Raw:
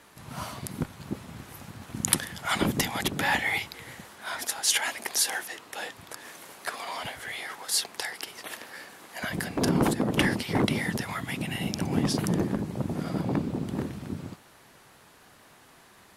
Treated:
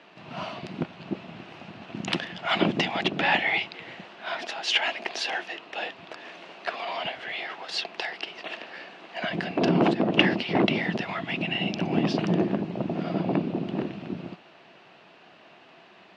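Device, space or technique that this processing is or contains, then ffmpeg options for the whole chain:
kitchen radio: -af "highpass=170,equalizer=frequency=180:width_type=q:width=4:gain=6,equalizer=frequency=350:width_type=q:width=4:gain=6,equalizer=frequency=670:width_type=q:width=4:gain=9,equalizer=frequency=2700:width_type=q:width=4:gain=10,lowpass=frequency=4500:width=0.5412,lowpass=frequency=4500:width=1.3066"

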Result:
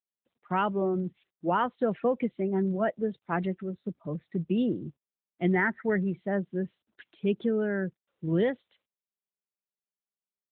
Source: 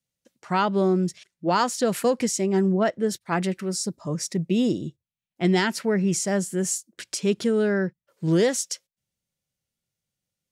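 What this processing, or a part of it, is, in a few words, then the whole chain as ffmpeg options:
mobile call with aggressive noise cancelling: -filter_complex "[0:a]asplit=3[link_01][link_02][link_03];[link_01]afade=type=out:start_time=5.53:duration=0.02[link_04];[link_02]highshelf=frequency=2400:width_type=q:width=3:gain=-6.5,afade=type=in:start_time=5.53:duration=0.02,afade=type=out:start_time=6:duration=0.02[link_05];[link_03]afade=type=in:start_time=6:duration=0.02[link_06];[link_04][link_05][link_06]amix=inputs=3:normalize=0,highpass=110,afftdn=noise_reduction=13:noise_floor=-33,volume=-4dB" -ar 8000 -c:a libopencore_amrnb -b:a 12200

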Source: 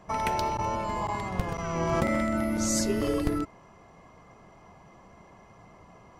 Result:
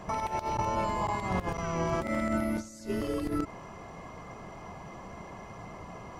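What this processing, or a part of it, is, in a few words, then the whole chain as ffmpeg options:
de-esser from a sidechain: -filter_complex "[0:a]asplit=2[link_01][link_02];[link_02]highpass=6300,apad=whole_len=273258[link_03];[link_01][link_03]sidechaincompress=threshold=-59dB:ratio=16:attack=1.7:release=75,volume=8.5dB"

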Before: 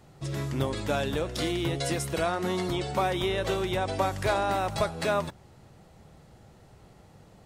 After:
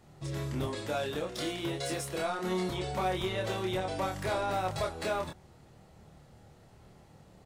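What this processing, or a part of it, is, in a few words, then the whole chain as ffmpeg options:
saturation between pre-emphasis and de-emphasis: -filter_complex "[0:a]asettb=1/sr,asplit=3[link_01][link_02][link_03];[link_01]atrim=end=0.674[link_04];[link_02]atrim=start=0.67:end=2.49,asetpts=PTS-STARTPTS,afade=type=in:duration=0.004:curve=qsin,afade=type=out:start_time=1.816:duration=0.004:curve=qsin,highpass=frequency=180:poles=1[link_05];[link_03]atrim=start=2.486[link_06];[link_04][link_05]acrossfade=duration=0.004:curve1=hsin:curve2=qsin[link_07];[link_07][link_06]acrossfade=duration=0.004:curve1=qsin:curve2=hsin,highshelf=frequency=3900:gain=9,asoftclip=type=tanh:threshold=-20.5dB,highshelf=frequency=3900:gain=-9,asplit=2[link_08][link_09];[link_09]adelay=27,volume=-3dB[link_10];[link_08][link_10]amix=inputs=2:normalize=0,volume=-4.5dB"

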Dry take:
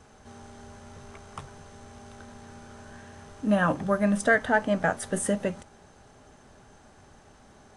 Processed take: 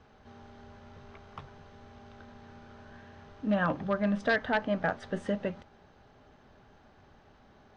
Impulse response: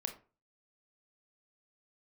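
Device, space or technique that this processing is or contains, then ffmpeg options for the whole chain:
synthesiser wavefolder: -af "aeval=exprs='0.2*(abs(mod(val(0)/0.2+3,4)-2)-1)':channel_layout=same,lowpass=frequency=4500:width=0.5412,lowpass=frequency=4500:width=1.3066,volume=-4.5dB"

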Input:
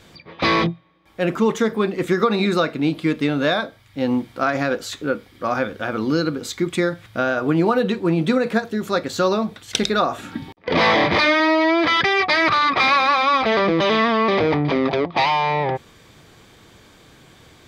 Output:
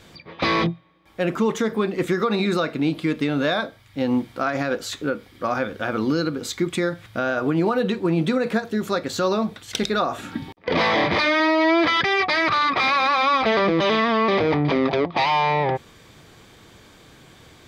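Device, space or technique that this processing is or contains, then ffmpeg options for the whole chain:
clipper into limiter: -af "asoftclip=type=hard:threshold=-7dB,alimiter=limit=-12dB:level=0:latency=1:release=136"

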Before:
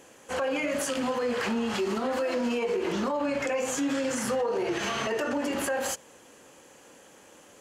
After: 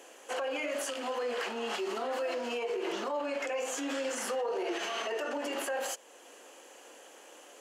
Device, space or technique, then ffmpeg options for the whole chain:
laptop speaker: -af "highpass=frequency=320:width=0.5412,highpass=frequency=320:width=1.3066,equalizer=frequency=700:width_type=o:width=0.21:gain=5,equalizer=frequency=2900:width_type=o:width=0.24:gain=4.5,alimiter=level_in=1.5dB:limit=-24dB:level=0:latency=1:release=368,volume=-1.5dB,lowshelf=frequency=69:gain=7.5"

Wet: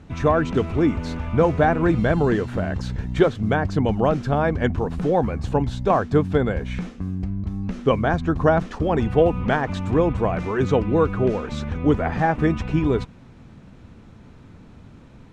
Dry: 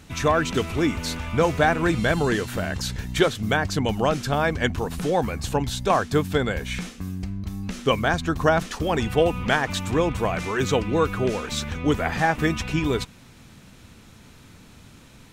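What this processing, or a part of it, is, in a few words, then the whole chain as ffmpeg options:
through cloth: -af "lowpass=8000,highshelf=frequency=2000:gain=-17.5,volume=4dB"

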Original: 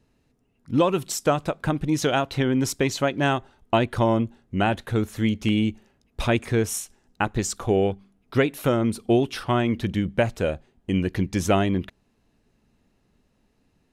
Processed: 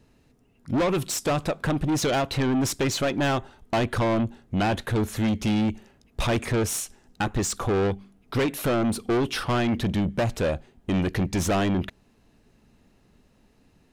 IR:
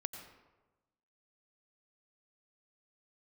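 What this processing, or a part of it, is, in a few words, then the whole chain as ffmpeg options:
saturation between pre-emphasis and de-emphasis: -af "highshelf=frequency=7300:gain=10,asoftclip=type=tanh:threshold=-26dB,highshelf=frequency=7300:gain=-10,volume=6dB"

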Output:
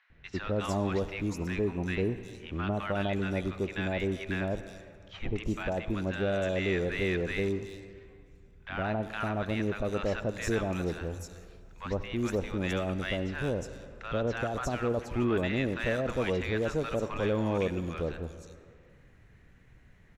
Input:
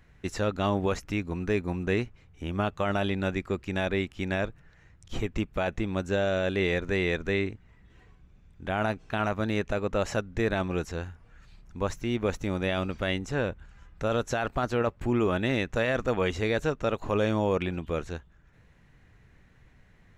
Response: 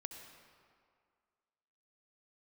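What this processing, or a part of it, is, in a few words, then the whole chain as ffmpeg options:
saturated reverb return: -filter_complex "[0:a]asplit=2[link_01][link_02];[1:a]atrim=start_sample=2205[link_03];[link_02][link_03]afir=irnorm=-1:irlink=0,asoftclip=type=tanh:threshold=-33dB,volume=1dB[link_04];[link_01][link_04]amix=inputs=2:normalize=0,asettb=1/sr,asplit=3[link_05][link_06][link_07];[link_05]atrim=end=9.984[link_08];[link_06]atrim=start=9.98:end=11.91,asetpts=PTS-STARTPTS,afade=type=in:duration=0.004:curve=qsin,afade=type=out:start_time=1.926:duration=0.004:curve=qsin,highshelf=frequency=7600:gain=7[link_09];[link_07]atrim=start=11.906[link_10];[link_08][link_09]acrossfade=duration=0.004:curve1=hsin:curve2=qsin[link_11];[link_11][link_10]acrossfade=duration=0.004:curve1=qsin:curve2=hsin,acrossover=split=960|4500[link_12][link_13][link_14];[link_12]adelay=100[link_15];[link_14]adelay=360[link_16];[link_15][link_13][link_16]amix=inputs=3:normalize=0,volume=-4.5dB"

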